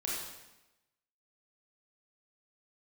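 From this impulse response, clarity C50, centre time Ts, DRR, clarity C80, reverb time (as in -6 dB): -1.0 dB, 76 ms, -5.5 dB, 2.0 dB, 1.0 s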